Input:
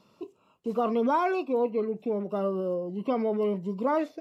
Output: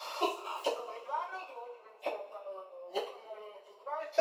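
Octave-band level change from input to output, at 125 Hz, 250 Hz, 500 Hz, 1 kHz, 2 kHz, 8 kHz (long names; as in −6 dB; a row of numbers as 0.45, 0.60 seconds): below −40 dB, −21.0 dB, −11.0 dB, −7.5 dB, −5.0 dB, can't be measured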